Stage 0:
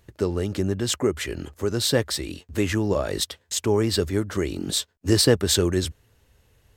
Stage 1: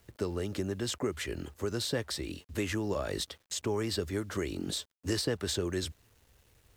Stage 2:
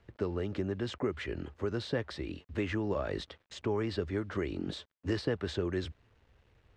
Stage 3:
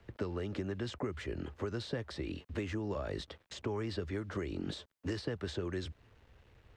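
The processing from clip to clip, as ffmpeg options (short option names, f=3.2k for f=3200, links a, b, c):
-filter_complex "[0:a]acrossover=split=270|960|7600[a][b][c][d];[a]acompressor=threshold=-30dB:ratio=4[e];[b]acompressor=threshold=-27dB:ratio=4[f];[c]acompressor=threshold=-29dB:ratio=4[g];[d]acompressor=threshold=-42dB:ratio=4[h];[e][f][g][h]amix=inputs=4:normalize=0,acrusher=bits=9:mix=0:aa=0.000001,volume=-5.5dB"
-af "lowpass=2.7k"
-filter_complex "[0:a]acrossover=split=170|1000|5100[a][b][c][d];[a]acompressor=threshold=-45dB:ratio=4[e];[b]acompressor=threshold=-41dB:ratio=4[f];[c]acompressor=threshold=-52dB:ratio=4[g];[d]acompressor=threshold=-55dB:ratio=4[h];[e][f][g][h]amix=inputs=4:normalize=0,volume=3.5dB"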